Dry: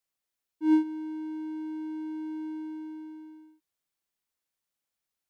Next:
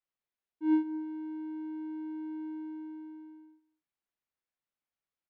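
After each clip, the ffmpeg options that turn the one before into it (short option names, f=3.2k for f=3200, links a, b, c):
-af "lowpass=2.8k,aecho=1:1:221:0.112,volume=-4dB"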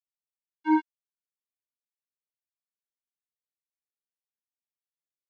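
-af "acrusher=bits=3:mix=0:aa=0.5,volume=3dB"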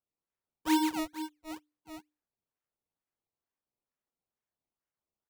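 -af "bandreject=f=60:t=h:w=6,bandreject=f=120:t=h:w=6,bandreject=f=180:t=h:w=6,bandreject=f=240:t=h:w=6,bandreject=f=300:t=h:w=6,aecho=1:1:110|264|479.6|781.4|1204:0.631|0.398|0.251|0.158|0.1,acrusher=samples=19:mix=1:aa=0.000001:lfo=1:lforange=19:lforate=2.2,volume=-4dB"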